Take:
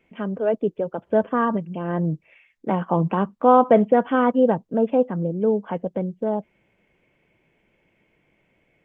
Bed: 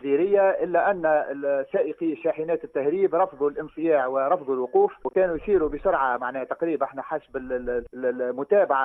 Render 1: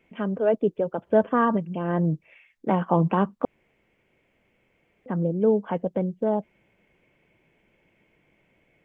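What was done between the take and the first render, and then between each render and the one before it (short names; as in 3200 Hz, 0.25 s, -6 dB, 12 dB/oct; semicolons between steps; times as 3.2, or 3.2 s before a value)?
3.45–5.06 room tone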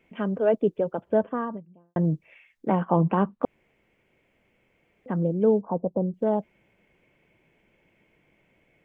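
0.74–1.96 studio fade out; 2.68–3.43 air absorption 250 m; 5.61–6.14 steep low-pass 1100 Hz 48 dB/oct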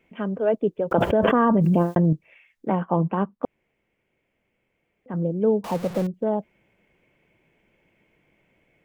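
0.91–2.13 fast leveller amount 100%; 2.86–5.14 upward expander, over -31 dBFS; 5.64–6.07 zero-crossing step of -30 dBFS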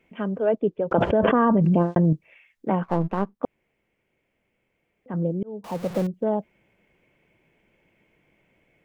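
0.46–2 air absorption 110 m; 2.83–3.35 half-wave gain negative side -7 dB; 5.43–5.94 fade in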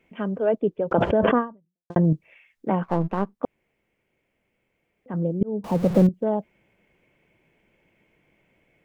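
1.38–1.9 fade out exponential; 5.41–6.09 low shelf 470 Hz +11 dB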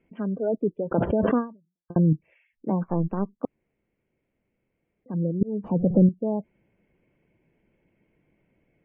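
spectral gate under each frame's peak -25 dB strong; EQ curve 280 Hz 0 dB, 800 Hz -7 dB, 1400 Hz -7 dB, 3300 Hz -12 dB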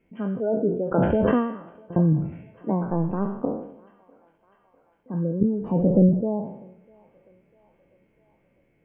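spectral trails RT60 0.72 s; thinning echo 0.649 s, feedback 76%, high-pass 600 Hz, level -23.5 dB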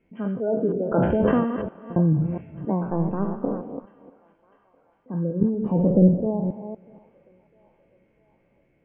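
reverse delay 0.241 s, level -8.5 dB; air absorption 76 m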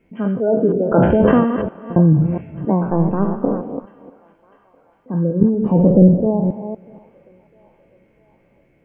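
gain +7.5 dB; limiter -1 dBFS, peak gain reduction 2.5 dB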